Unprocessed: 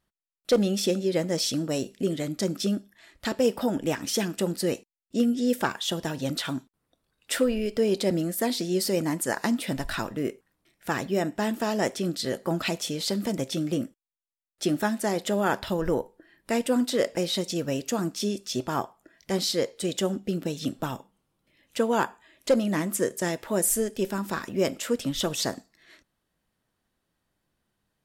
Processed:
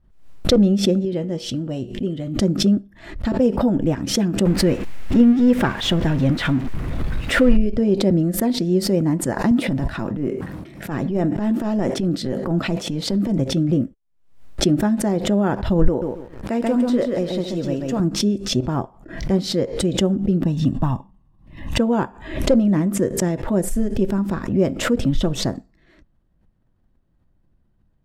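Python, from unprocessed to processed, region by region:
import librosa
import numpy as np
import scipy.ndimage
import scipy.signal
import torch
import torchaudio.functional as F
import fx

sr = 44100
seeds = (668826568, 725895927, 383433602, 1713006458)

y = fx.chain(x, sr, fx.peak_eq(hz=3000.0, db=12.0, octaves=0.24),
    fx.comb_fb(f0_hz=120.0, decay_s=0.23, harmonics='all', damping=0.0, mix_pct=60), at=(1.05, 2.41))
y = fx.chain(y, sr, fx.zero_step(step_db=-31.0),
    fx.peak_eq(hz=2100.0, db=8.0, octaves=1.3), at=(4.45, 7.57))
y = fx.chain(y, sr, fx.highpass(hz=130.0, slope=12),
    fx.transient(attack_db=-10, sustain_db=2),
    fx.sustainer(db_per_s=38.0), at=(9.51, 13.38))
y = fx.chain(y, sr, fx.highpass(hz=300.0, slope=6),
    fx.echo_crushed(ms=135, feedback_pct=35, bits=8, wet_db=-3), at=(15.88, 18.0))
y = fx.chain(y, sr, fx.peak_eq(hz=1100.0, db=7.5, octaves=0.35),
    fx.comb(ms=1.1, depth=0.56), at=(20.43, 21.78))
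y = fx.tilt_eq(y, sr, slope=-4.5)
y = fx.notch(y, sr, hz=440.0, q=12.0)
y = fx.pre_swell(y, sr, db_per_s=91.0)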